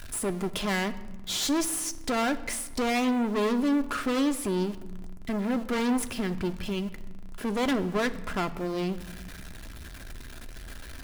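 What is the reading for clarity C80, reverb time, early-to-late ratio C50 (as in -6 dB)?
17.5 dB, 1.2 s, 16.0 dB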